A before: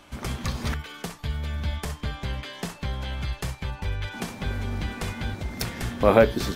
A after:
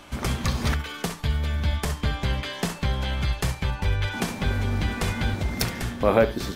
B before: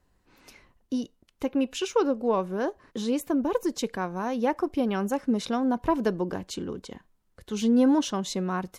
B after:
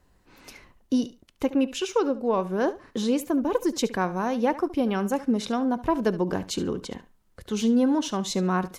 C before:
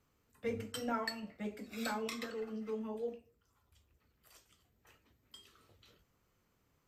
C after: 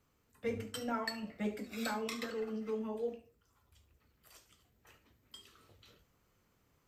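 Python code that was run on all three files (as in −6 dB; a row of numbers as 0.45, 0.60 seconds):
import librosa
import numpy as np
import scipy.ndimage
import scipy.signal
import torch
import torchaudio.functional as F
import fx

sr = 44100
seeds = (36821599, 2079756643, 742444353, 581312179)

y = fx.rider(x, sr, range_db=4, speed_s=0.5)
y = fx.echo_feedback(y, sr, ms=71, feedback_pct=17, wet_db=-16)
y = y * librosa.db_to_amplitude(1.5)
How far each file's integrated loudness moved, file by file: +2.0, +1.5, +1.5 LU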